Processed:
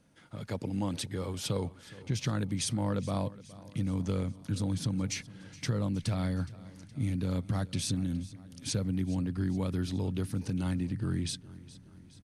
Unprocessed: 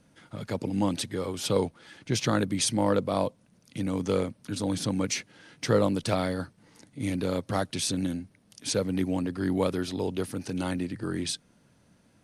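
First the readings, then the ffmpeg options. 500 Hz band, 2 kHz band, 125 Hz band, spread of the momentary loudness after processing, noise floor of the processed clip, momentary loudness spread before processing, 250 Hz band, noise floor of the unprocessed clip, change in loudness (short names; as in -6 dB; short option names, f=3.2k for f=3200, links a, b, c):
-11.0 dB, -7.5 dB, +1.5 dB, 11 LU, -54 dBFS, 11 LU, -4.0 dB, -63 dBFS, -4.0 dB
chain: -af "asubboost=boost=5.5:cutoff=180,acompressor=threshold=-23dB:ratio=6,aecho=1:1:418|836|1254|1672|2090:0.112|0.0628|0.0352|0.0197|0.011,volume=-4.5dB"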